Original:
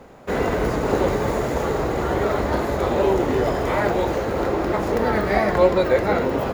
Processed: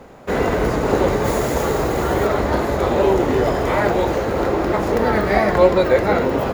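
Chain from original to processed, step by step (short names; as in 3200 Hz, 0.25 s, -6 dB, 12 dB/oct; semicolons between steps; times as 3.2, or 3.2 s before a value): 1.24–2.26 high shelf 5200 Hz -> 7900 Hz +10 dB; gain +3 dB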